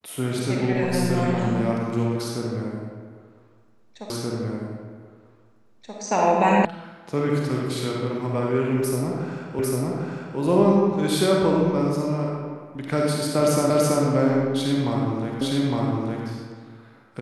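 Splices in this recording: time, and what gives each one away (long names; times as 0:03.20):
0:04.10: the same again, the last 1.88 s
0:06.65: cut off before it has died away
0:09.59: the same again, the last 0.8 s
0:13.70: the same again, the last 0.33 s
0:15.41: the same again, the last 0.86 s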